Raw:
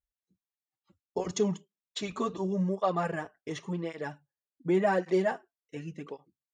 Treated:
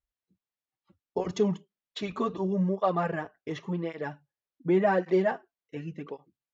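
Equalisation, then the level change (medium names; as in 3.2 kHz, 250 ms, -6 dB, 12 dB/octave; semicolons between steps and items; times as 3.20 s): distance through air 150 m; +2.5 dB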